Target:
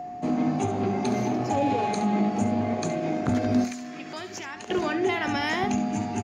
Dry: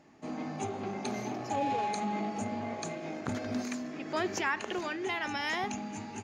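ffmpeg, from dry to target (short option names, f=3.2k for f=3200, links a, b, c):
-filter_complex "[0:a]lowshelf=f=430:g=9,asplit=2[a][b];[b]alimiter=level_in=3dB:limit=-24dB:level=0:latency=1:release=390,volume=-3dB,volume=2dB[c];[a][c]amix=inputs=2:normalize=0,aeval=exprs='val(0)+0.0251*sin(2*PI*720*n/s)':c=same,asettb=1/sr,asplit=3[d][e][f];[d]atrim=end=3.644[g];[e]atrim=start=3.64:end=4.7,asetpts=PTS-STARTPTS,afade=t=in:d=0.004:c=qsin,afade=t=out:st=1.056:d=0.004:c=qsin,acrossover=split=1100|3200[h][i][j];[h]acompressor=threshold=-41dB:ratio=4[k];[i]acompressor=threshold=-43dB:ratio=4[l];[j]acompressor=threshold=-39dB:ratio=4[m];[k][l][m]amix=inputs=3:normalize=0[n];[f]atrim=start=4.696[o];[g][n]acrossfade=d=0.004:c1=hsin:c2=qsin[p];[p][o]acrossfade=d=0.004:c1=qsin:c2=hsin,asplit=2[q][r];[r]aecho=0:1:16|69:0.188|0.282[s];[q][s]amix=inputs=2:normalize=0"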